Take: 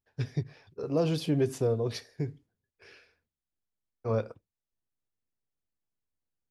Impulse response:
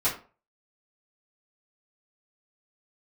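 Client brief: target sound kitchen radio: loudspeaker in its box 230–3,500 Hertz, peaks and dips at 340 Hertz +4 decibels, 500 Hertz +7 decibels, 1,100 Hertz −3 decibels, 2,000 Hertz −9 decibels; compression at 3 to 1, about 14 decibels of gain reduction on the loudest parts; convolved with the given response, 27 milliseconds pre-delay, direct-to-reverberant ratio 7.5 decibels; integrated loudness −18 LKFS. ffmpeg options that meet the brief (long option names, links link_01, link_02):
-filter_complex "[0:a]acompressor=threshold=-42dB:ratio=3,asplit=2[link_01][link_02];[1:a]atrim=start_sample=2205,adelay=27[link_03];[link_02][link_03]afir=irnorm=-1:irlink=0,volume=-17.5dB[link_04];[link_01][link_04]amix=inputs=2:normalize=0,highpass=230,equalizer=frequency=340:width_type=q:width=4:gain=4,equalizer=frequency=500:width_type=q:width=4:gain=7,equalizer=frequency=1100:width_type=q:width=4:gain=-3,equalizer=frequency=2000:width_type=q:width=4:gain=-9,lowpass=frequency=3500:width=0.5412,lowpass=frequency=3500:width=1.3066,volume=23dB"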